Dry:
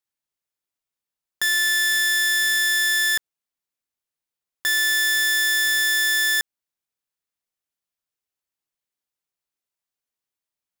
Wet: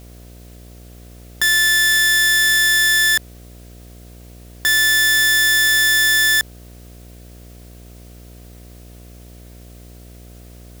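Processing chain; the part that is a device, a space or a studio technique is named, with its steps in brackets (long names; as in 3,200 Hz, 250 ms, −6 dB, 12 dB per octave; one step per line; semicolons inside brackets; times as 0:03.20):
video cassette with head-switching buzz (hum with harmonics 60 Hz, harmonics 12, −46 dBFS −6 dB per octave; white noise bed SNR 31 dB)
level +5.5 dB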